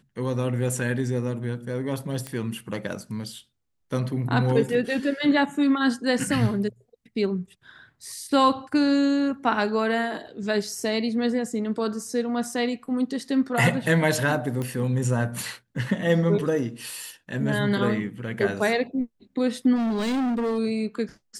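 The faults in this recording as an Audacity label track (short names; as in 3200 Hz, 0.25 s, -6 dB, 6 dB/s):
2.270000	2.270000	pop -18 dBFS
14.620000	14.620000	pop -18 dBFS
19.750000	20.590000	clipped -22.5 dBFS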